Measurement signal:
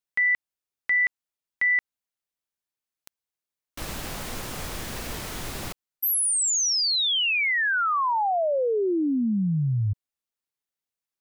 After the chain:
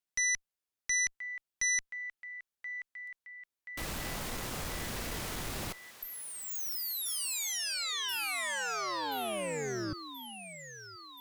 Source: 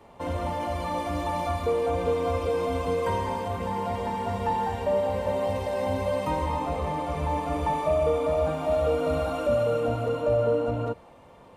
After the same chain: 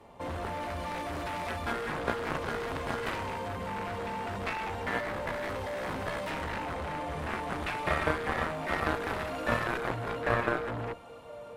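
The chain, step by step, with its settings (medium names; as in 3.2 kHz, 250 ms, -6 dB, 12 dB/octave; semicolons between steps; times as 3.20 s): thinning echo 1029 ms, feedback 65%, high-pass 800 Hz, level -15.5 dB; Chebyshev shaper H 2 -24 dB, 3 -8 dB, 7 -25 dB, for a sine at -13 dBFS; trim +2.5 dB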